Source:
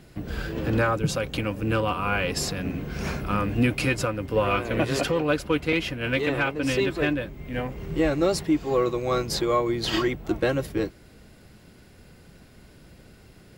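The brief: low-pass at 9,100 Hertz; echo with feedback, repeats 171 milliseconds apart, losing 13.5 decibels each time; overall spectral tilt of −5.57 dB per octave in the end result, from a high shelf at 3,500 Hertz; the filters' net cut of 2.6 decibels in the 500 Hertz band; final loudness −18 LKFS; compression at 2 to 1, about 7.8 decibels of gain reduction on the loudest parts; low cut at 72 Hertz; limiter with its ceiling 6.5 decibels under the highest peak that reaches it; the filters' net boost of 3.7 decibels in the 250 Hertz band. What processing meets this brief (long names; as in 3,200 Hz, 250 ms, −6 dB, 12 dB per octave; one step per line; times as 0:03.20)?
high-pass filter 72 Hz
low-pass filter 9,100 Hz
parametric band 250 Hz +7 dB
parametric band 500 Hz −5.5 dB
high-shelf EQ 3,500 Hz −8 dB
downward compressor 2 to 1, threshold −28 dBFS
brickwall limiter −22 dBFS
repeating echo 171 ms, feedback 21%, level −13.5 dB
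level +13.5 dB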